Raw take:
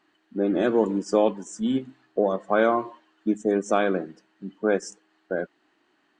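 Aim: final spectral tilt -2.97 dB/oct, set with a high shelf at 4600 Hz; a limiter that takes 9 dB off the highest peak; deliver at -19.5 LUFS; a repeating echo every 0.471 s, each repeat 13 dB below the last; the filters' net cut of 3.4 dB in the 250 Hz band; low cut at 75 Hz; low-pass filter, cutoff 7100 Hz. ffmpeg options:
-af "highpass=75,lowpass=7.1k,equalizer=f=250:t=o:g=-4.5,highshelf=f=4.6k:g=-8,alimiter=limit=-18dB:level=0:latency=1,aecho=1:1:471|942|1413:0.224|0.0493|0.0108,volume=11.5dB"

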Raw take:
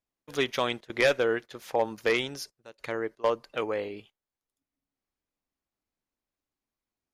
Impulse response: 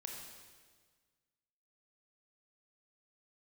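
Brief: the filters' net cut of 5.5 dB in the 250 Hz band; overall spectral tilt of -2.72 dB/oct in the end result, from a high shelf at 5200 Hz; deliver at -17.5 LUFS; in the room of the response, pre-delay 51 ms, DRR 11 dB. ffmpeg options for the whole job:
-filter_complex "[0:a]equalizer=f=250:t=o:g=-8.5,highshelf=f=5.2k:g=5,asplit=2[a][b];[1:a]atrim=start_sample=2205,adelay=51[c];[b][c]afir=irnorm=-1:irlink=0,volume=-8.5dB[d];[a][d]amix=inputs=2:normalize=0,volume=12.5dB"

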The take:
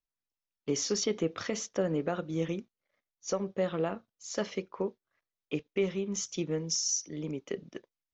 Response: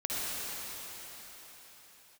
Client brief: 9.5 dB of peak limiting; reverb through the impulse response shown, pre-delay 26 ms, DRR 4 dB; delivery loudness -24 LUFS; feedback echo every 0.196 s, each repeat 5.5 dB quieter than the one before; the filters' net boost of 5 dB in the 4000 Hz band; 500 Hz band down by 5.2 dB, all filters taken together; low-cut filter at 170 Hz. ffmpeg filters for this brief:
-filter_complex "[0:a]highpass=170,equalizer=f=500:t=o:g=-6.5,equalizer=f=4k:t=o:g=8,alimiter=level_in=1dB:limit=-24dB:level=0:latency=1,volume=-1dB,aecho=1:1:196|392|588|784|980|1176|1372:0.531|0.281|0.149|0.079|0.0419|0.0222|0.0118,asplit=2[a][b];[1:a]atrim=start_sample=2205,adelay=26[c];[b][c]afir=irnorm=-1:irlink=0,volume=-12dB[d];[a][d]amix=inputs=2:normalize=0,volume=10.5dB"

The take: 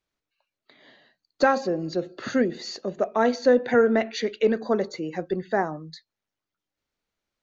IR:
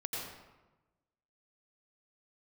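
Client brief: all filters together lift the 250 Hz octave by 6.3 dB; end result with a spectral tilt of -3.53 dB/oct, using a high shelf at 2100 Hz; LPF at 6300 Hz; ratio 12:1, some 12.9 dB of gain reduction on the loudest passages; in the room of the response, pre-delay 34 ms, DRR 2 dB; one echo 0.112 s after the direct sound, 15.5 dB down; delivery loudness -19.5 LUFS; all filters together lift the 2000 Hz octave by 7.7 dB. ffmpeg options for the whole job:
-filter_complex "[0:a]lowpass=6.3k,equalizer=f=250:t=o:g=7,equalizer=f=2k:t=o:g=8,highshelf=f=2.1k:g=3.5,acompressor=threshold=-23dB:ratio=12,aecho=1:1:112:0.168,asplit=2[a][b];[1:a]atrim=start_sample=2205,adelay=34[c];[b][c]afir=irnorm=-1:irlink=0,volume=-4.5dB[d];[a][d]amix=inputs=2:normalize=0,volume=7.5dB"

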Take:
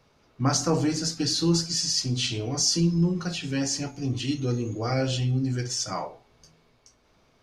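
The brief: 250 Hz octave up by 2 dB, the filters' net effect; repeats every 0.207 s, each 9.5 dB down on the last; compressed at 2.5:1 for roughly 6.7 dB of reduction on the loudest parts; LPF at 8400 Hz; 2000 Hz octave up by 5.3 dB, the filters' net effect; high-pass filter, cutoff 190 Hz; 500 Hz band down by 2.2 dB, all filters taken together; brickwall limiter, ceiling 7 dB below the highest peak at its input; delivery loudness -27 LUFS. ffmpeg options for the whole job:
-af "highpass=190,lowpass=8.4k,equalizer=f=250:t=o:g=7,equalizer=f=500:t=o:g=-6.5,equalizer=f=2k:t=o:g=7.5,acompressor=threshold=-28dB:ratio=2.5,alimiter=limit=-22.5dB:level=0:latency=1,aecho=1:1:207|414|621|828:0.335|0.111|0.0365|0.012,volume=4dB"

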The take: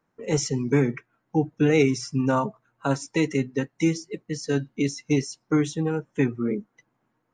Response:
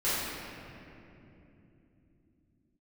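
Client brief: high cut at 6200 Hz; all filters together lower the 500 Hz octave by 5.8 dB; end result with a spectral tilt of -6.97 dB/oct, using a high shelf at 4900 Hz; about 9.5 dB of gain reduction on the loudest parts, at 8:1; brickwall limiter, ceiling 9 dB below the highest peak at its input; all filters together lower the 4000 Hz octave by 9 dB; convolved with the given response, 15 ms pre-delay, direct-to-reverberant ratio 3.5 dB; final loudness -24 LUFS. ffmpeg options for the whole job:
-filter_complex "[0:a]lowpass=6.2k,equalizer=f=500:t=o:g=-7,equalizer=f=4k:t=o:g=-8,highshelf=f=4.9k:g=-6.5,acompressor=threshold=-28dB:ratio=8,alimiter=level_in=2dB:limit=-24dB:level=0:latency=1,volume=-2dB,asplit=2[a][b];[1:a]atrim=start_sample=2205,adelay=15[c];[b][c]afir=irnorm=-1:irlink=0,volume=-14.5dB[d];[a][d]amix=inputs=2:normalize=0,volume=11dB"

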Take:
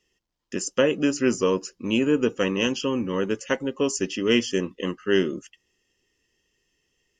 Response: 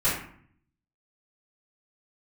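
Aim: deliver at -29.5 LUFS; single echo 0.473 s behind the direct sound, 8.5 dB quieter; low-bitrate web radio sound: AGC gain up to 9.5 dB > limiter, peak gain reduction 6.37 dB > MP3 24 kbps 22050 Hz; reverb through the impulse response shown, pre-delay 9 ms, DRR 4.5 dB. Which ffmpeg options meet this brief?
-filter_complex "[0:a]aecho=1:1:473:0.376,asplit=2[a][b];[1:a]atrim=start_sample=2205,adelay=9[c];[b][c]afir=irnorm=-1:irlink=0,volume=-17.5dB[d];[a][d]amix=inputs=2:normalize=0,dynaudnorm=m=9.5dB,alimiter=limit=-12dB:level=0:latency=1,volume=-5dB" -ar 22050 -c:a libmp3lame -b:a 24k

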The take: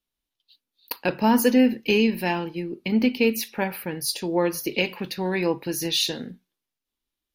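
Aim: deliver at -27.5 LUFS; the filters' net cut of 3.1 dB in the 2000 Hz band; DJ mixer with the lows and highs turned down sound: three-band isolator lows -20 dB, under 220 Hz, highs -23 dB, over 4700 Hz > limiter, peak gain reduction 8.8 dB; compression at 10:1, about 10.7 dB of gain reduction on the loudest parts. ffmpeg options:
-filter_complex "[0:a]equalizer=f=2k:t=o:g=-3.5,acompressor=threshold=-24dB:ratio=10,acrossover=split=220 4700:gain=0.1 1 0.0708[a][b][c];[a][b][c]amix=inputs=3:normalize=0,volume=6.5dB,alimiter=limit=-17dB:level=0:latency=1"

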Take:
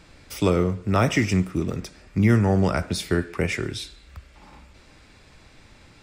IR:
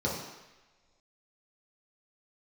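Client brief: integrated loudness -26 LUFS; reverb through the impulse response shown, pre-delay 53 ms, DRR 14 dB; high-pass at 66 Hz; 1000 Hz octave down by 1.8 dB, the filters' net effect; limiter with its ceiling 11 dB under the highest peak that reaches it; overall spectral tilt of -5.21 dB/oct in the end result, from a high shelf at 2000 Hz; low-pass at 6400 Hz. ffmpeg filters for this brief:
-filter_complex "[0:a]highpass=66,lowpass=6.4k,equalizer=f=1k:t=o:g=-4,highshelf=f=2k:g=4.5,alimiter=limit=-18dB:level=0:latency=1,asplit=2[a][b];[1:a]atrim=start_sample=2205,adelay=53[c];[b][c]afir=irnorm=-1:irlink=0,volume=-22.5dB[d];[a][d]amix=inputs=2:normalize=0,volume=2dB"

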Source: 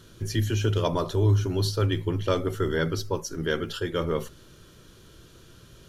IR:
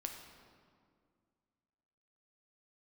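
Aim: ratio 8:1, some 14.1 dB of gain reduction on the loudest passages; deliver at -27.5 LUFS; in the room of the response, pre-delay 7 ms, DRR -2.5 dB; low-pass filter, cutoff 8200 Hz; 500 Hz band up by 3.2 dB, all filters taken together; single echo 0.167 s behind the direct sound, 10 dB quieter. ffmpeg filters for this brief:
-filter_complex "[0:a]lowpass=8.2k,equalizer=f=500:t=o:g=4,acompressor=threshold=-31dB:ratio=8,aecho=1:1:167:0.316,asplit=2[a][b];[1:a]atrim=start_sample=2205,adelay=7[c];[b][c]afir=irnorm=-1:irlink=0,volume=4dB[d];[a][d]amix=inputs=2:normalize=0,volume=3.5dB"

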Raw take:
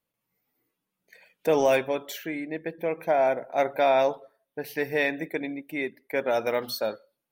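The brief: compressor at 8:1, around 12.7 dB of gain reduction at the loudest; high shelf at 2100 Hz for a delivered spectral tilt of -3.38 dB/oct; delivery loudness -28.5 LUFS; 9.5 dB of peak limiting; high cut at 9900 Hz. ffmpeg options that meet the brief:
-af "lowpass=9.9k,highshelf=f=2.1k:g=5.5,acompressor=threshold=-30dB:ratio=8,volume=9.5dB,alimiter=limit=-17dB:level=0:latency=1"

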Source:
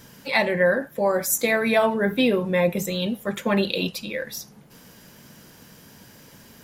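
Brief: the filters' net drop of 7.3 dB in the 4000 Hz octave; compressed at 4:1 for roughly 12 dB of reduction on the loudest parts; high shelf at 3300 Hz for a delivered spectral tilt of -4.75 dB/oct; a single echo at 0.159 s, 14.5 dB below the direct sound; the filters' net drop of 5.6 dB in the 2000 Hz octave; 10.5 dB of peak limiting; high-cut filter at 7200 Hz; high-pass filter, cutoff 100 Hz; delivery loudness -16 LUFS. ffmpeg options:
-af "highpass=100,lowpass=7.2k,equalizer=f=2k:t=o:g=-4.5,highshelf=f=3.3k:g=-4.5,equalizer=f=4k:t=o:g=-4,acompressor=threshold=-31dB:ratio=4,alimiter=level_in=5.5dB:limit=-24dB:level=0:latency=1,volume=-5.5dB,aecho=1:1:159:0.188,volume=22.5dB"

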